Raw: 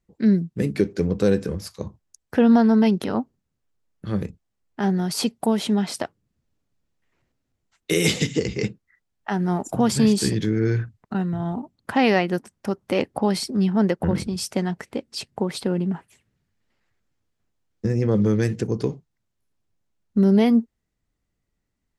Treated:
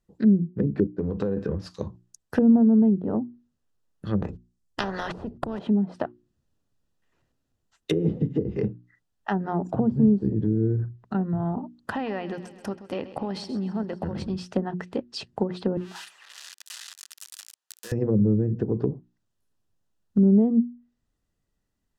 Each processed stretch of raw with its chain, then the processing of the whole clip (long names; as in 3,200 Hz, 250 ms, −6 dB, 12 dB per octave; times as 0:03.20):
0:00.87–0:01.37: downward compressor 8 to 1, threshold −21 dBFS + noise gate −36 dBFS, range −14 dB
0:04.22–0:05.59: noise gate −51 dBFS, range −25 dB + bass and treble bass +8 dB, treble +10 dB + every bin compressed towards the loudest bin 4 to 1
0:11.93–0:14.30: square-wave tremolo 1 Hz, depth 60%, duty 90% + downward compressor 8 to 1, threshold −25 dBFS + repeating echo 131 ms, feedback 58%, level −14.5 dB
0:15.77–0:17.92: spike at every zero crossing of −20 dBFS + high-pass filter 1,000 Hz
whole clip: mains-hum notches 60/120/180/240/300/360 Hz; treble cut that deepens with the level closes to 370 Hz, closed at −19 dBFS; notch filter 2,200 Hz, Q 5.4